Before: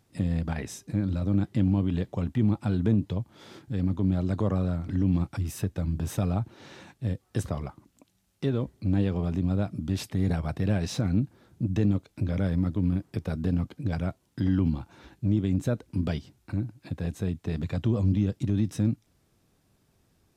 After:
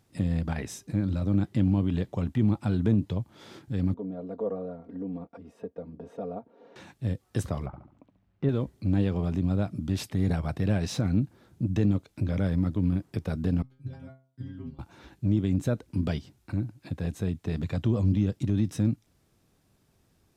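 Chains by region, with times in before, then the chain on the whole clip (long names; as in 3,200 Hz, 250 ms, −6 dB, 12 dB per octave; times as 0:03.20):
0:03.94–0:06.76: resonant band-pass 510 Hz, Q 2.5 + comb filter 4.3 ms, depth 99%
0:07.66–0:08.49: low-pass filter 1,800 Hz + low-shelf EQ 150 Hz +5.5 dB + flutter between parallel walls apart 12 metres, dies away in 0.48 s
0:13.62–0:14.79: low-shelf EQ 190 Hz +11 dB + stiff-string resonator 130 Hz, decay 0.48 s, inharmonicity 0.002 + expander for the loud parts, over −50 dBFS
whole clip: no processing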